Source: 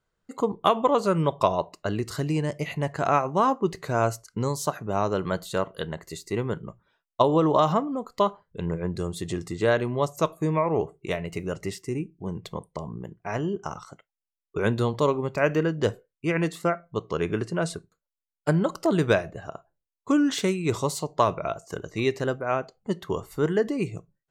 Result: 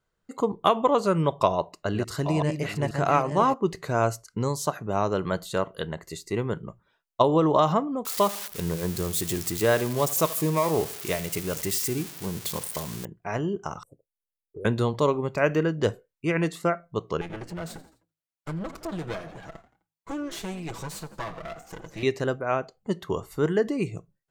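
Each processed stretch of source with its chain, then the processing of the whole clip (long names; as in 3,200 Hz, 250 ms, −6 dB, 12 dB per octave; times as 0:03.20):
0:01.46–0:03.54: delay that plays each chunk backwards 483 ms, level −6.5 dB + single-tap delay 796 ms −13.5 dB
0:08.05–0:13.05: spike at every zero crossing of −21.5 dBFS + repeating echo 79 ms, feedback 41%, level −18.5 dB
0:13.83–0:14.65: Chebyshev band-stop filter 520–9,800 Hz, order 4 + parametric band 190 Hz −13 dB 0.5 octaves + downward compressor 1.5 to 1, threshold −51 dBFS
0:17.21–0:22.03: lower of the sound and its delayed copy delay 6.1 ms + echo with shifted repeats 85 ms, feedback 41%, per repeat +52 Hz, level −20 dB + downward compressor 2 to 1, threshold −37 dBFS
whole clip: no processing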